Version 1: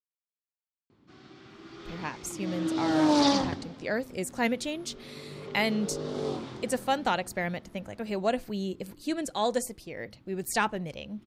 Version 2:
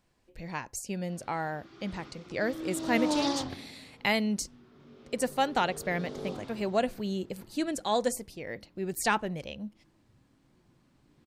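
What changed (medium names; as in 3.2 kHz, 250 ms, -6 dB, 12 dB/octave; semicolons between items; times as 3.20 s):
speech: entry -1.50 s; background -6.5 dB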